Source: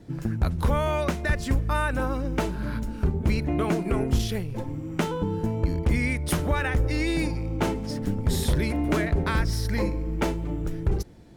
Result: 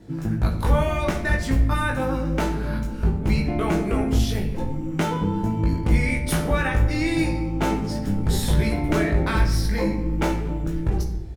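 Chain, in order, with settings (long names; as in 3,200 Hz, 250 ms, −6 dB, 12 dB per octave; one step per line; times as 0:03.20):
double-tracking delay 19 ms −3.5 dB
rectangular room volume 310 cubic metres, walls mixed, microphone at 0.67 metres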